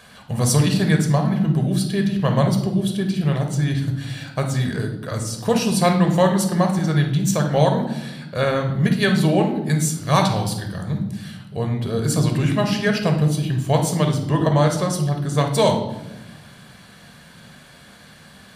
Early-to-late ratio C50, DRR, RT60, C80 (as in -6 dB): 7.0 dB, 3.5 dB, 1.0 s, 11.0 dB